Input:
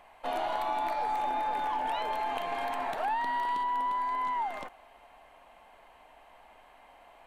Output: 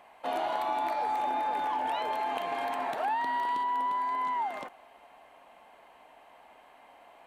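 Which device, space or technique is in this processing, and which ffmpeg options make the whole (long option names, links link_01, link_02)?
filter by subtraction: -filter_complex "[0:a]asplit=2[link_01][link_02];[link_02]lowpass=250,volume=-1[link_03];[link_01][link_03]amix=inputs=2:normalize=0"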